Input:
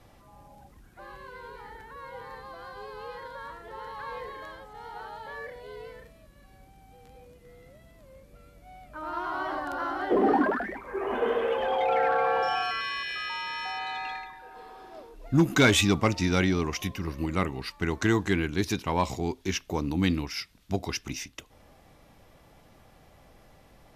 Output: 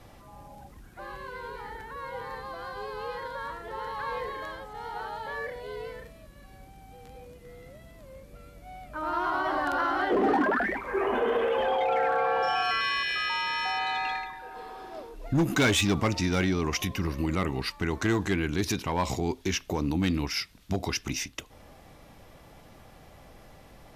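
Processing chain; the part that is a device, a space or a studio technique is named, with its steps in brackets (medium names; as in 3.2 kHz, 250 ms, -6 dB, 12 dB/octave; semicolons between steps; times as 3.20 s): 9.59–11.08 s: peaking EQ 2.6 kHz +4 dB 2.1 oct; clipper into limiter (hard clipper -17 dBFS, distortion -19 dB; peak limiter -23 dBFS, peak gain reduction 6 dB); trim +4.5 dB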